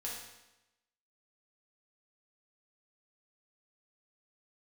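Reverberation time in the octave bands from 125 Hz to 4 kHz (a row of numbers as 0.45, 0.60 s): 0.95, 0.95, 0.95, 0.95, 0.95, 0.90 s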